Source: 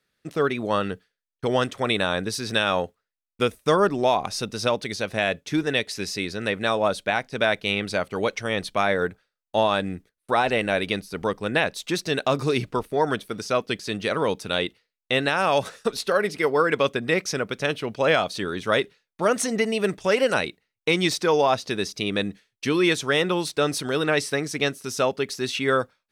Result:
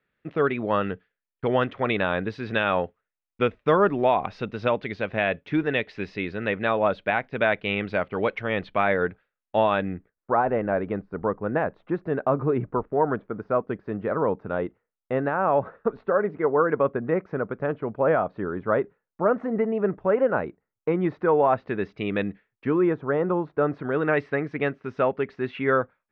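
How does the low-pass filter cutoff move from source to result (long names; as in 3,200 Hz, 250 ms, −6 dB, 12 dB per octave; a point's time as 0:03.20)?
low-pass filter 24 dB per octave
0:09.76 2,700 Hz
0:10.31 1,400 Hz
0:20.98 1,400 Hz
0:22.24 2,500 Hz
0:22.91 1,300 Hz
0:23.41 1,300 Hz
0:24.18 2,100 Hz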